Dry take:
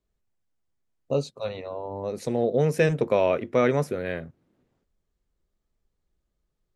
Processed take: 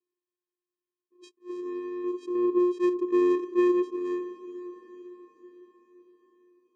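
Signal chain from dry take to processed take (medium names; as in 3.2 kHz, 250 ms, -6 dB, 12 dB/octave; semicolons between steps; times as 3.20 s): vocoder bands 4, square 356 Hz; echo that smears into a reverb 528 ms, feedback 51%, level -15 dB; attacks held to a fixed rise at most 320 dB/s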